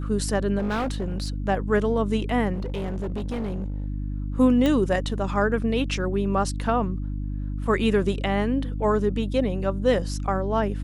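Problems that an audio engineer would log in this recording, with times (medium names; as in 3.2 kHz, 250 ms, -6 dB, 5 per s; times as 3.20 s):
hum 50 Hz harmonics 6 -29 dBFS
0.58–1.30 s: clipped -22.5 dBFS
2.53–3.86 s: clipped -25 dBFS
4.66 s: pop -12 dBFS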